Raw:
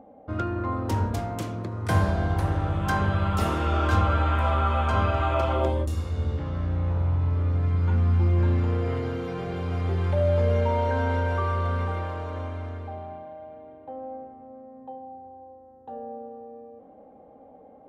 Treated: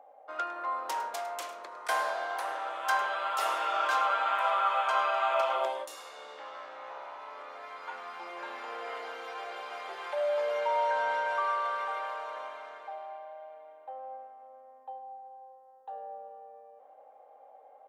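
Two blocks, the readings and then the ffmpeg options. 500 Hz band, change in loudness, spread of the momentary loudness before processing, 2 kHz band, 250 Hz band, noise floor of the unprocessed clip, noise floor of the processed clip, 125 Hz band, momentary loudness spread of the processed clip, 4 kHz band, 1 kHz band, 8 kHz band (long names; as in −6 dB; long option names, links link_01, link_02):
−5.5 dB, −6.0 dB, 19 LU, +0.5 dB, −27.0 dB, −51 dBFS, −56 dBFS, below −40 dB, 18 LU, 0.0 dB, 0.0 dB, can't be measured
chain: -af "highpass=frequency=640:width=0.5412,highpass=frequency=640:width=1.3066,aecho=1:1:104:0.168"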